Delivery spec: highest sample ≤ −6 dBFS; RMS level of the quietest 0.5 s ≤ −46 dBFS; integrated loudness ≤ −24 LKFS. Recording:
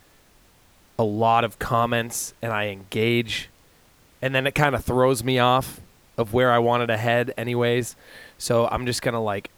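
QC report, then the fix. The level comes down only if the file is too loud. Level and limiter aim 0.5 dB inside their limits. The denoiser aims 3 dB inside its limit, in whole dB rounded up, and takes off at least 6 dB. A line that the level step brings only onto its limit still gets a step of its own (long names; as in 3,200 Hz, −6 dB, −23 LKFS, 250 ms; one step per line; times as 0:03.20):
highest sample −4.0 dBFS: out of spec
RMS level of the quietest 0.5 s −56 dBFS: in spec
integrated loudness −22.5 LKFS: out of spec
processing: level −2 dB
brickwall limiter −6.5 dBFS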